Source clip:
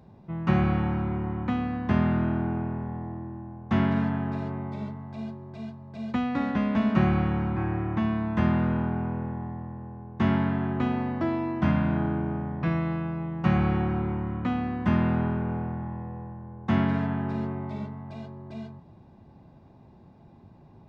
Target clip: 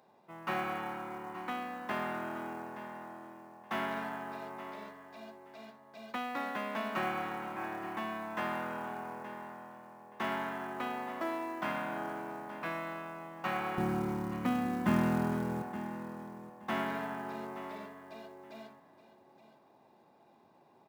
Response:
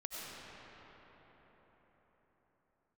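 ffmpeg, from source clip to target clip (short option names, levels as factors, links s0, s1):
-af "asetnsamples=n=441:p=0,asendcmd='13.78 highpass f 190;15.62 highpass f 460',highpass=560,acrusher=bits=6:mode=log:mix=0:aa=0.000001,aecho=1:1:873|1746:0.2|0.0399,volume=0.75"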